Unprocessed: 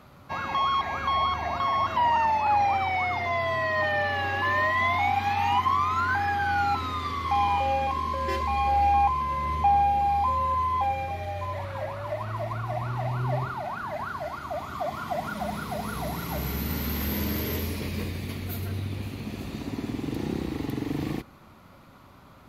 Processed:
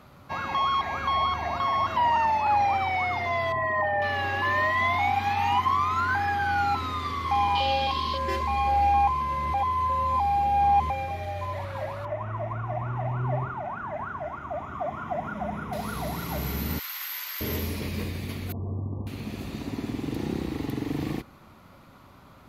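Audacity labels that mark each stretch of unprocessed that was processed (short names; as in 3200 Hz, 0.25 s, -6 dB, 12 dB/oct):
3.520000	4.020000	formant sharpening exponent 2
7.550000	8.180000	band shelf 3800 Hz +13.5 dB 1.1 oct
9.540000	10.900000	reverse
12.050000	15.730000	running mean over 10 samples
16.790000	17.410000	HPF 1100 Hz 24 dB/oct
18.520000	19.070000	brick-wall FIR low-pass 1200 Hz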